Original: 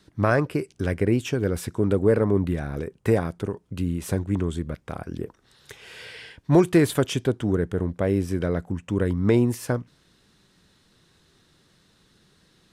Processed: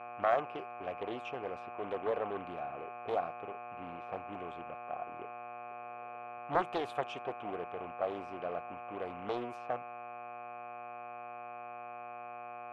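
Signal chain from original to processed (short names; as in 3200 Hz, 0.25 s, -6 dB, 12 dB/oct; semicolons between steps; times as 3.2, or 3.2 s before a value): low-pass opened by the level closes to 480 Hz, open at -18 dBFS; buzz 120 Hz, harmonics 21, -36 dBFS -3 dB/oct; vowel filter a; Doppler distortion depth 0.42 ms; gain +1.5 dB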